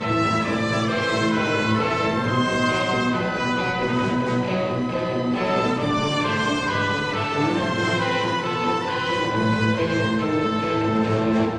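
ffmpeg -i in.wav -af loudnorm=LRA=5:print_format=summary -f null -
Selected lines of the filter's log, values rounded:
Input Integrated:    -21.9 LUFS
Input True Peak:      -8.9 dBTP
Input LRA:             1.0 LU
Input Threshold:     -31.9 LUFS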